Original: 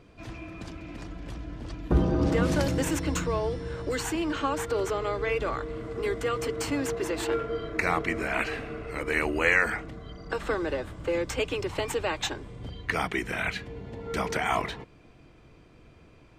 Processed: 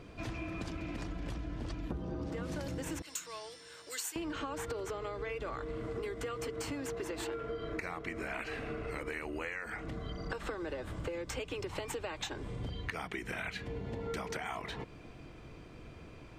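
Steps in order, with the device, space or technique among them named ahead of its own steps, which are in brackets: 3.02–4.16 differentiator; serial compression, leveller first (compressor 2:1, threshold -32 dBFS, peak gain reduction 9 dB; compressor 10:1, threshold -39 dBFS, peak gain reduction 15 dB); gain +3.5 dB

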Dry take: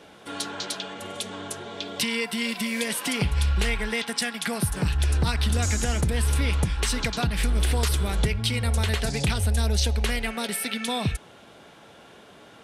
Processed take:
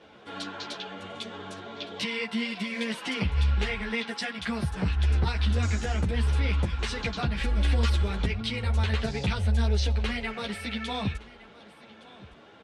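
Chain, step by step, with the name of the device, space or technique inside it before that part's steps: 7.39–8.03 comb 3.6 ms, depth 59%; string-machine ensemble chorus (ensemble effect; LPF 4200 Hz 12 dB/oct); echo 1.164 s -20 dB

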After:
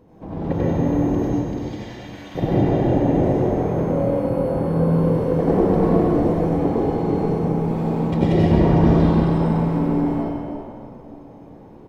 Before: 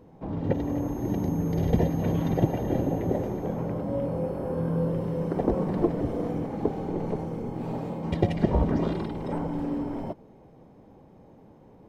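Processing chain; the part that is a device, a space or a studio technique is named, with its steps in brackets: 1.18–2.35 Bessel high-pass 2400 Hz, order 2; cave (echo 0.328 s -13.5 dB; reverb RT60 2.7 s, pre-delay 79 ms, DRR -8 dB)

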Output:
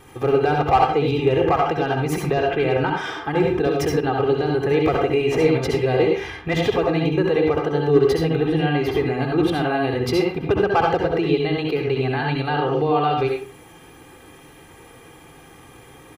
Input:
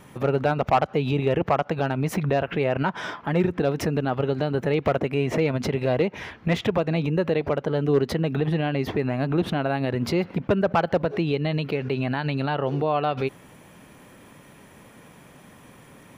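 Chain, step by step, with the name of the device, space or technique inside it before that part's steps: microphone above a desk (comb 2.5 ms, depth 73%; reverb RT60 0.35 s, pre-delay 61 ms, DRR 0.5 dB)

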